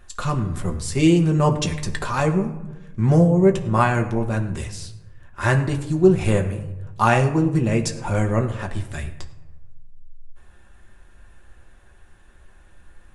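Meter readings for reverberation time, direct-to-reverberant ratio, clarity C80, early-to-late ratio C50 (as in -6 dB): 1.0 s, 2.0 dB, 13.0 dB, 11.5 dB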